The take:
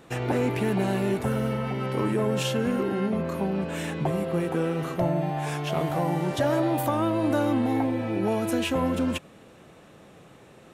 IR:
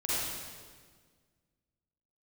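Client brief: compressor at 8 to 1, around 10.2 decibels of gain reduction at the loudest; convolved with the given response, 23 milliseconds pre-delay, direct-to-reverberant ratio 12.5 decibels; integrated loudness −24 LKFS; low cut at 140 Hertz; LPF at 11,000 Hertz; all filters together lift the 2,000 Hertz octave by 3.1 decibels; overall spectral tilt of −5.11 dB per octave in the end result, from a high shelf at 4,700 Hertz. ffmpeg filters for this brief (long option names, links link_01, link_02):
-filter_complex "[0:a]highpass=140,lowpass=11000,equalizer=frequency=2000:width_type=o:gain=5.5,highshelf=frequency=4700:gain=-8,acompressor=threshold=-31dB:ratio=8,asplit=2[link_01][link_02];[1:a]atrim=start_sample=2205,adelay=23[link_03];[link_02][link_03]afir=irnorm=-1:irlink=0,volume=-20.5dB[link_04];[link_01][link_04]amix=inputs=2:normalize=0,volume=10.5dB"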